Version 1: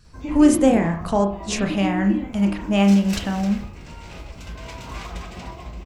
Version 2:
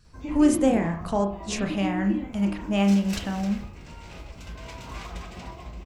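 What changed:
speech -5.0 dB; background -4.0 dB

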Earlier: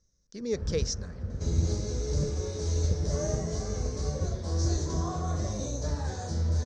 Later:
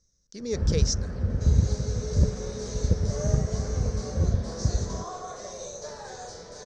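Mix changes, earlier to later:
speech: add high shelf 4000 Hz +7 dB; first sound +8.5 dB; second sound: add steep high-pass 380 Hz 72 dB/oct

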